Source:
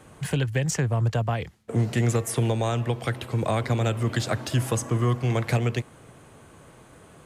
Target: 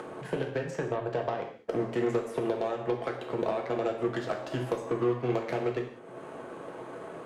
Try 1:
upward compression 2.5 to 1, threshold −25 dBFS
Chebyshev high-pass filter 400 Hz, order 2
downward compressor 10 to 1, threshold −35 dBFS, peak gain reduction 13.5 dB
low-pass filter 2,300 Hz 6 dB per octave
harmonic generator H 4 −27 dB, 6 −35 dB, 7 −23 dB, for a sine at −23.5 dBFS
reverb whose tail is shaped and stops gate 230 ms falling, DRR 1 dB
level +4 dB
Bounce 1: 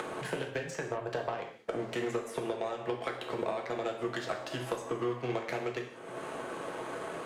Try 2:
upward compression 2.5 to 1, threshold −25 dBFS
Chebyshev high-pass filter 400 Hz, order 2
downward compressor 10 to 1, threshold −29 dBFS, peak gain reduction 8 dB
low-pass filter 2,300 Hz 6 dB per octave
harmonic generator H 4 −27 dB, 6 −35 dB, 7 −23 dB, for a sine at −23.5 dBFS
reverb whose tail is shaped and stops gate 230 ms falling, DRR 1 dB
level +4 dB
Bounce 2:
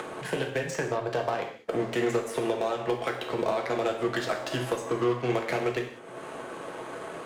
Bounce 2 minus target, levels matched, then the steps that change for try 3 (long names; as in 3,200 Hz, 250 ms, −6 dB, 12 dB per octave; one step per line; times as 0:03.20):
2,000 Hz band +4.5 dB
change: low-pass filter 700 Hz 6 dB per octave